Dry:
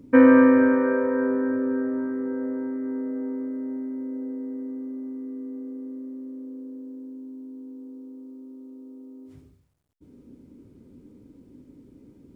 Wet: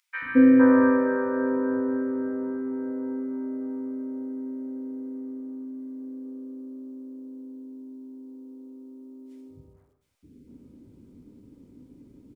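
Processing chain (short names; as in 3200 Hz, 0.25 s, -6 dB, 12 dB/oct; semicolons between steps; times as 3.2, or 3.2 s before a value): 5.18–5.8 notch comb 420 Hz; three bands offset in time highs, lows, mids 0.22/0.46 s, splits 450/1600 Hz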